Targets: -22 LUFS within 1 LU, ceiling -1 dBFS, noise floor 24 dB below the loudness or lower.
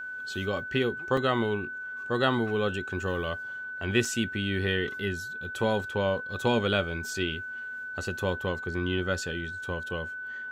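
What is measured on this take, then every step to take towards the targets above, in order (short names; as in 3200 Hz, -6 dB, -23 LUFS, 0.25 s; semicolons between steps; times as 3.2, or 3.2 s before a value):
dropouts 2; longest dropout 3.4 ms; steady tone 1500 Hz; tone level -35 dBFS; loudness -30.0 LUFS; peak -10.5 dBFS; loudness target -22.0 LUFS
-> interpolate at 1.17/4.05, 3.4 ms; notch 1500 Hz, Q 30; gain +8 dB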